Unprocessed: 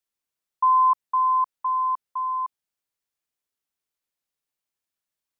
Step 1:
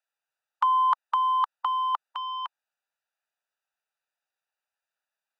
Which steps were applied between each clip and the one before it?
Wiener smoothing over 41 samples; HPF 880 Hz 24 dB/oct; spectral compressor 2:1; gain +6 dB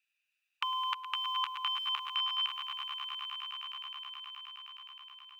resonant high-pass 2500 Hz, resonance Q 7.2; swelling echo 0.105 s, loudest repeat 8, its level -11.5 dB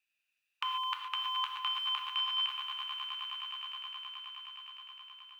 non-linear reverb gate 0.16 s flat, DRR 3.5 dB; gain -2 dB

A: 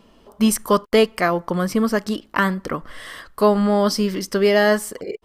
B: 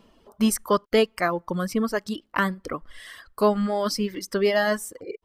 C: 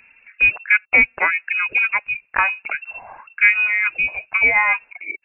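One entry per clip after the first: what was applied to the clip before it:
reverb removal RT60 1.4 s; gain -4 dB
inverted band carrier 2700 Hz; gain +5.5 dB

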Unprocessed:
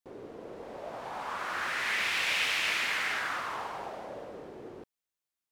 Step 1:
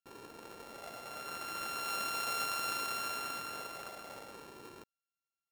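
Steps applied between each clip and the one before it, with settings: sample sorter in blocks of 32 samples; gain -6.5 dB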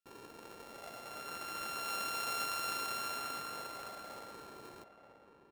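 outdoor echo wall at 160 m, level -8 dB; gain -1.5 dB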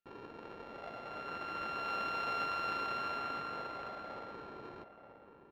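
air absorption 300 m; gain +4.5 dB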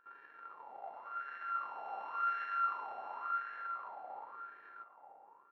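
wah 0.92 Hz 770–1700 Hz, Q 8.5; pre-echo 0.115 s -15.5 dB; gain +8.5 dB

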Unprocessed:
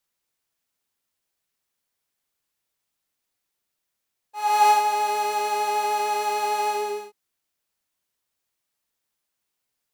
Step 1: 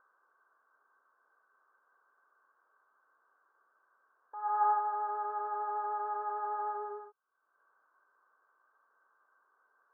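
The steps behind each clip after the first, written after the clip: HPF 1200 Hz 12 dB/oct; upward compressor, threshold -34 dBFS; rippled Chebyshev low-pass 1600 Hz, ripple 9 dB; gain +4.5 dB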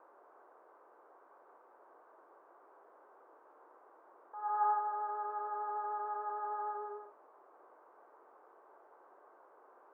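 band noise 350–1200 Hz -59 dBFS; gain -3 dB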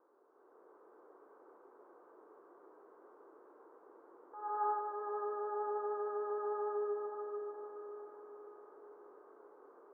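EQ curve 440 Hz 0 dB, 640 Hz -12 dB, 1300 Hz -9 dB, 2400 Hz -15 dB; AGC gain up to 9 dB; diffused feedback echo 0.54 s, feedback 50%, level -5 dB; gain -2.5 dB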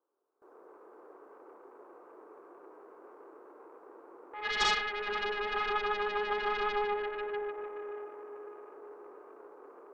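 self-modulated delay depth 0.94 ms; gate with hold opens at -57 dBFS; gain +7 dB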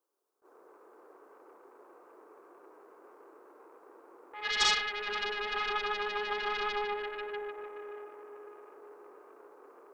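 high shelf 2600 Hz +11.5 dB; attack slew limiter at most 420 dB/s; gain -3.5 dB

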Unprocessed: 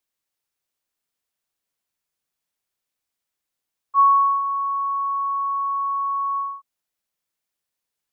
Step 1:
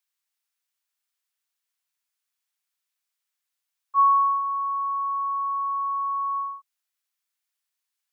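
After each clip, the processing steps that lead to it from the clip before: HPF 1100 Hz 12 dB/oct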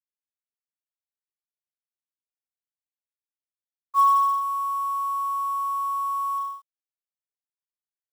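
companded quantiser 6-bit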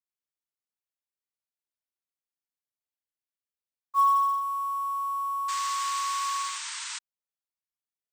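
painted sound noise, 5.48–6.99, 870–8900 Hz -33 dBFS; gain -3.5 dB

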